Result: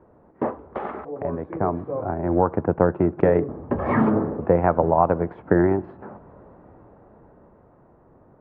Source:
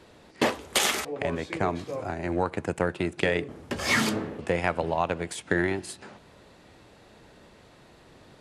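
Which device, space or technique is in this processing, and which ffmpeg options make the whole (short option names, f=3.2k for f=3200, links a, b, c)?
action camera in a waterproof case: -filter_complex "[0:a]asettb=1/sr,asplit=3[a][b][c];[a]atrim=end=3.534[d];[b]atrim=start=3.53:end=4.04,asetpts=PTS-STARTPTS,afade=t=in:d=0.004:c=qsin,afade=t=out:st=0.506:d=0.004:c=qsin,bandreject=f=1.4k:w=11[e];[c]atrim=start=4.036[f];[d][e]acrossfade=d=0.004:c1=hsin:c2=qsin[g];[g][f]acrossfade=d=0.004:c1=qsin:c2=hsin,lowpass=f=1.2k:w=0.5412,lowpass=f=1.2k:w=1.3066,dynaudnorm=f=230:g=17:m=11.5dB" -ar 44100 -c:a aac -b:a 128k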